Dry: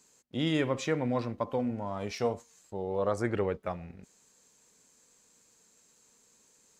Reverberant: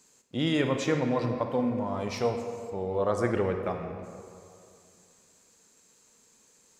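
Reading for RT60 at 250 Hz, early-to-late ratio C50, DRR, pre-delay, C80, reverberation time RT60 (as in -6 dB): 2.4 s, 6.0 dB, 5.5 dB, 34 ms, 7.0 dB, 2.4 s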